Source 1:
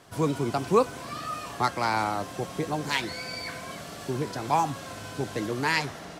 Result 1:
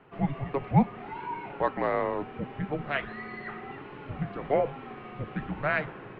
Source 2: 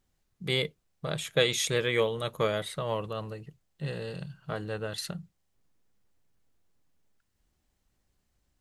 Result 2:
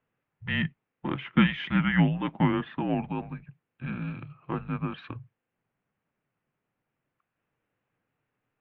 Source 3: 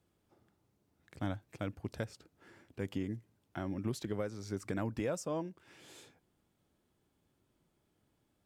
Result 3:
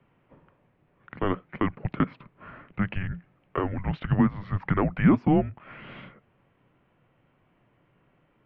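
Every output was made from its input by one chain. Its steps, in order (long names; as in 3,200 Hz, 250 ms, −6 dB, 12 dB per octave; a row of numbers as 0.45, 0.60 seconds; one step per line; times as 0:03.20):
single-sideband voice off tune −290 Hz 180–2,900 Hz
low shelf with overshoot 100 Hz −11 dB, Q 1.5
normalise the peak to −9 dBFS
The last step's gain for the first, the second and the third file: −1.0, +3.5, +16.5 decibels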